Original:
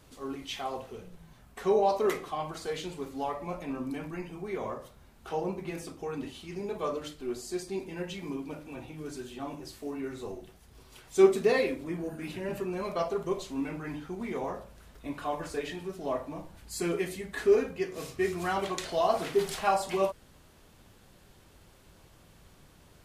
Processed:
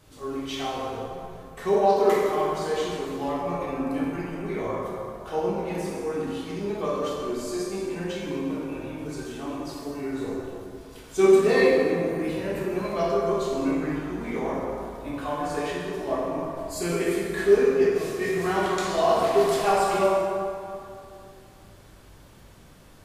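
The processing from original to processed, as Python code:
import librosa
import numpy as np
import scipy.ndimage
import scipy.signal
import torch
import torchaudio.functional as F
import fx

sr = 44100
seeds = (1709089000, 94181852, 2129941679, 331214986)

y = fx.rev_plate(x, sr, seeds[0], rt60_s=2.6, hf_ratio=0.55, predelay_ms=0, drr_db=-5.0)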